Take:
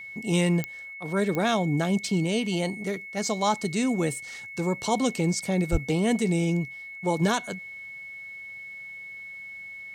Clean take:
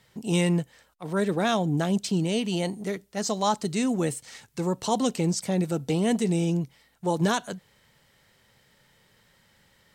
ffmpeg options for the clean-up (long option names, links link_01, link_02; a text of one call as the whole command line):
ffmpeg -i in.wav -filter_complex "[0:a]adeclick=threshold=4,bandreject=frequency=2200:width=30,asplit=3[link_01][link_02][link_03];[link_01]afade=type=out:start_time=5.71:duration=0.02[link_04];[link_02]highpass=frequency=140:width=0.5412,highpass=frequency=140:width=1.3066,afade=type=in:start_time=5.71:duration=0.02,afade=type=out:start_time=5.83:duration=0.02[link_05];[link_03]afade=type=in:start_time=5.83:duration=0.02[link_06];[link_04][link_05][link_06]amix=inputs=3:normalize=0" out.wav